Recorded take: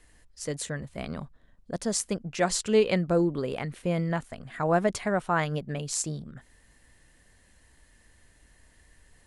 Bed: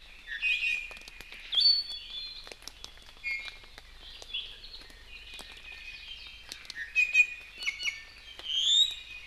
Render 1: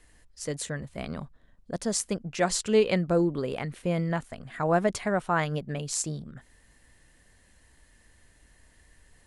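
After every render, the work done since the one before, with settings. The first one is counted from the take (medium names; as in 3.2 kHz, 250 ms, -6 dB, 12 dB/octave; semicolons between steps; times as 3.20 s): no audible change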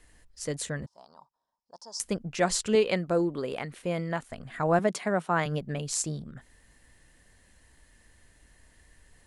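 0.86–2.00 s: two resonant band-passes 2.2 kHz, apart 2.5 oct; 2.75–4.29 s: bass shelf 170 Hz -10.5 dB; 4.79–5.46 s: elliptic high-pass 160 Hz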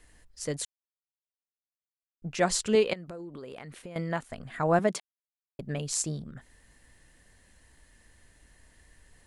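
0.65–2.22 s: mute; 2.93–3.96 s: compression 12:1, threshold -38 dBFS; 5.00–5.59 s: mute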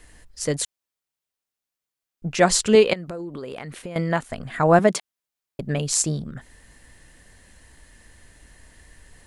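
trim +8.5 dB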